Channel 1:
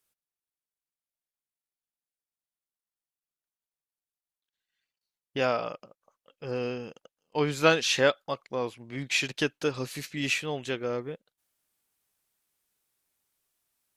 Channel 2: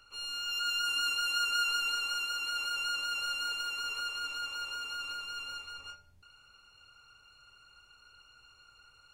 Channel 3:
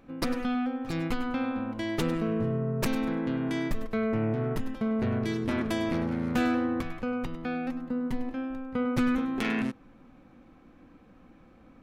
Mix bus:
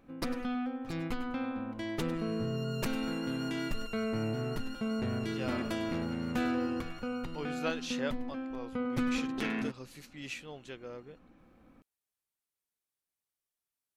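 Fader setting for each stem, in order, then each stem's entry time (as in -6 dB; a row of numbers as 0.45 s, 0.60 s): -13.5 dB, -15.0 dB, -5.5 dB; 0.00 s, 2.05 s, 0.00 s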